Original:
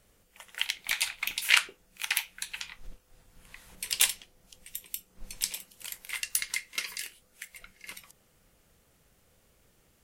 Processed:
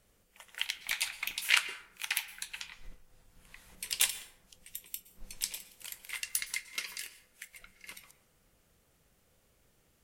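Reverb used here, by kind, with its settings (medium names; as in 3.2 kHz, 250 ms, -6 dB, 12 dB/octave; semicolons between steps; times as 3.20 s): plate-style reverb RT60 0.81 s, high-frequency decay 0.5×, pre-delay 105 ms, DRR 14.5 dB; trim -4 dB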